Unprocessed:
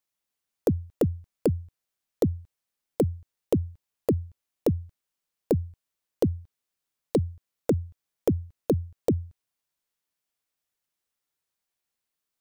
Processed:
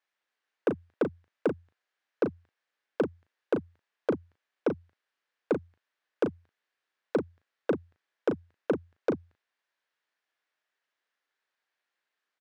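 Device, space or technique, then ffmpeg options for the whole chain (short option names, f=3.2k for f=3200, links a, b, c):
intercom: -filter_complex "[0:a]highpass=390,lowpass=3.5k,equalizer=f=1.7k:t=o:w=0.49:g=7.5,asoftclip=type=tanh:threshold=-22dB,asplit=2[a][b];[b]adelay=37,volume=-7.5dB[c];[a][c]amix=inputs=2:normalize=0,volume=4dB"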